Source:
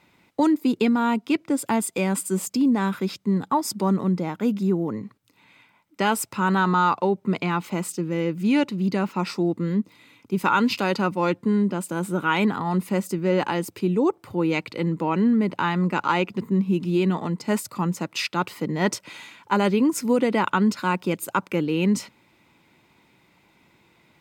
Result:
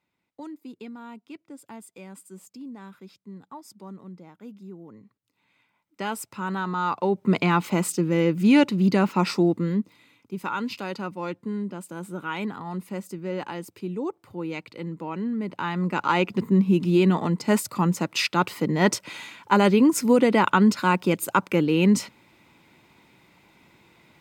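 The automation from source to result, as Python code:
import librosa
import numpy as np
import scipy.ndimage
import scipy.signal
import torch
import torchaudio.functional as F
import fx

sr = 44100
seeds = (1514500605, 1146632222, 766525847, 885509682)

y = fx.gain(x, sr, db=fx.line((4.73, -19.5), (6.06, -8.0), (6.74, -8.0), (7.34, 3.5), (9.38, 3.5), (10.37, -9.0), (15.3, -9.0), (16.37, 2.5)))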